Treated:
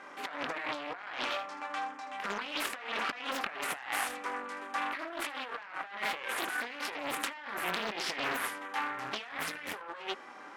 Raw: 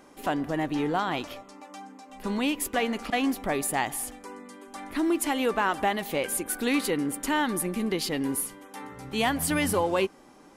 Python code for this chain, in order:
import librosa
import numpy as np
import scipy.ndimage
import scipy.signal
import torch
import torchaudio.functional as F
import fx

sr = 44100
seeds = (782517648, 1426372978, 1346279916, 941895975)

y = fx.room_early_taps(x, sr, ms=(24, 79), db=(-4.5, -9.5))
y = fx.cheby_harmonics(y, sr, harmonics=(5, 6, 7), levels_db=(-10, -8, -17), full_scale_db=-9.5)
y = fx.bandpass_q(y, sr, hz=1600.0, q=1.3)
y = fx.over_compress(y, sr, threshold_db=-38.0, ratio=-1.0)
y = fx.doppler_dist(y, sr, depth_ms=0.72)